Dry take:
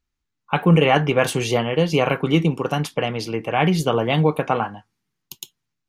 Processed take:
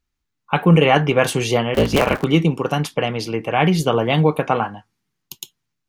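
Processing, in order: 1.74–2.25 cycle switcher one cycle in 3, inverted; gain +2 dB

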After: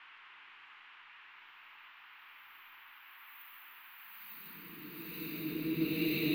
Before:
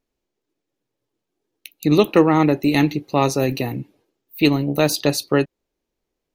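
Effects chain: Paulstretch 32×, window 0.25 s, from 4.17; rotary speaker horn 1.1 Hz; band noise 930–2900 Hz -52 dBFS; gain -4 dB

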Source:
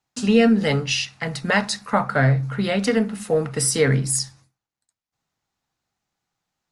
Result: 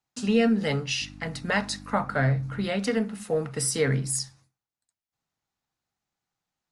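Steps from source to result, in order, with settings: 1–2.67 buzz 50 Hz, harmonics 6, -39 dBFS -1 dB/oct; gain -6 dB

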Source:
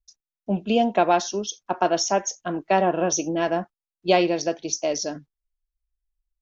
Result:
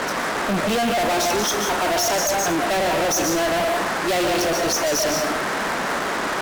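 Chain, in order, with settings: low shelf 280 Hz -8 dB; band noise 180–1800 Hz -39 dBFS; digital reverb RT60 0.74 s, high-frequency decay 0.7×, pre-delay 0.1 s, DRR 7 dB; fuzz box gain 42 dB, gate -43 dBFS; gain -6 dB

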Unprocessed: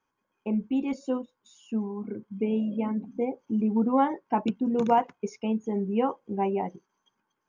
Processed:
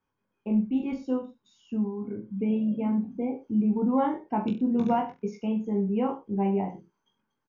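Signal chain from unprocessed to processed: LPF 5900 Hz 24 dB/oct; low shelf 240 Hz +11 dB; reverse bouncing-ball echo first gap 20 ms, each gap 1.1×, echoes 5; gain -6 dB

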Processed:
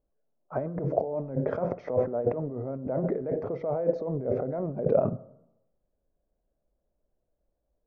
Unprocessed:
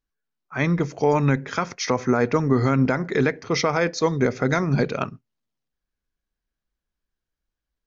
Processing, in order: negative-ratio compressor -31 dBFS, ratio -1; synth low-pass 600 Hz, resonance Q 4.9; on a send: reverb RT60 0.90 s, pre-delay 12 ms, DRR 18.5 dB; on the sum: gain -2.5 dB

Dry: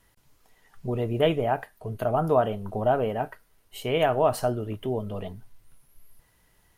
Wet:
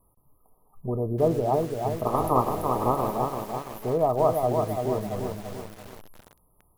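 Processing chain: 2.05–3.15 spectral limiter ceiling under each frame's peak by 26 dB; brick-wall FIR band-stop 1300–10000 Hz; lo-fi delay 0.337 s, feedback 55%, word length 7-bit, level -4 dB

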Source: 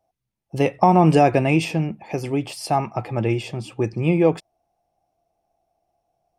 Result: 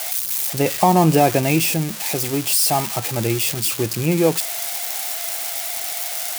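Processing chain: switching spikes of -12 dBFS

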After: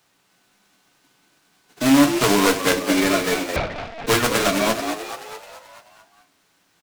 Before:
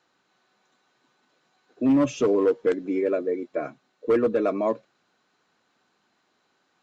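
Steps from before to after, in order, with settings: spectral whitening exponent 0.3; in parallel at -2 dB: compressor, threshold -32 dBFS, peak gain reduction 16 dB; on the sum: frequency-shifting echo 0.216 s, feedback 58%, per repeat +72 Hz, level -8 dB; on a send at -4 dB: reverb RT60 0.30 s, pre-delay 7 ms; 3.56–4.07 on the sum: LPC vocoder at 8 kHz pitch kept; noise-modulated delay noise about 1400 Hz, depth 0.032 ms

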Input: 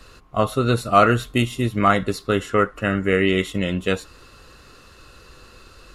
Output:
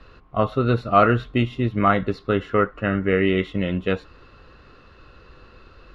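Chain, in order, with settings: air absorption 280 m

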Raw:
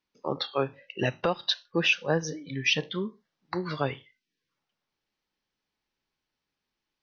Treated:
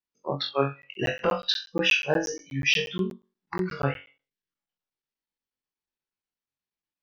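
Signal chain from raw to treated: flutter echo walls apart 3.7 m, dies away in 0.41 s; spectral noise reduction 15 dB; crackling interface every 0.12 s, samples 512, zero, from 0.82

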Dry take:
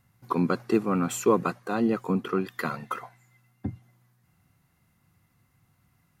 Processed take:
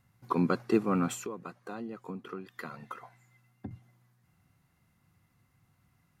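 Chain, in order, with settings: high shelf 11000 Hz -5.5 dB; 1.13–3.71 compressor 4:1, threshold -37 dBFS, peak gain reduction 17.5 dB; gain -2.5 dB

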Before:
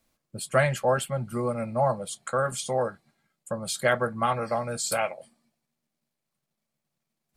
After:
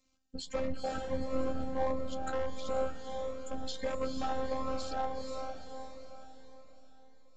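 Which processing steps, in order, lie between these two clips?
octaver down 2 oct, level 0 dB; treble ducked by the level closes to 1200 Hz, closed at -23.5 dBFS; high shelf 5000 Hz +6 dB; in parallel at +2 dB: compressor, threshold -33 dBFS, peak gain reduction 15.5 dB; on the sum: ring modulator 40 Hz; robotiser 262 Hz; hard clip -20 dBFS, distortion -13 dB; diffused feedback echo 0.475 s, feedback 48%, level -4.5 dB; on a send at -18.5 dB: reverb RT60 1.6 s, pre-delay 87 ms; on the sum: downsampling 16000 Hz; cascading phaser rising 1.5 Hz; gain -4.5 dB

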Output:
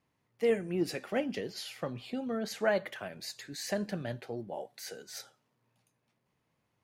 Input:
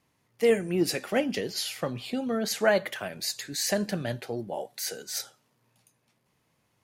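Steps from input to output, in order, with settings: high shelf 4600 Hz -9 dB; gain -5.5 dB

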